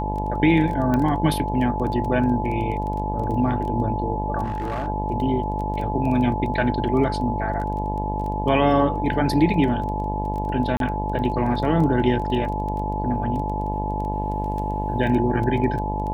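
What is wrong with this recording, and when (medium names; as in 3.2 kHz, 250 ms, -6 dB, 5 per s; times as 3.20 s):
buzz 50 Hz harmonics 20 -27 dBFS
crackle 11 per s -29 dBFS
whine 860 Hz -27 dBFS
0.94 s: pop -12 dBFS
4.43–4.88 s: clipped -23 dBFS
10.77–10.80 s: dropout 32 ms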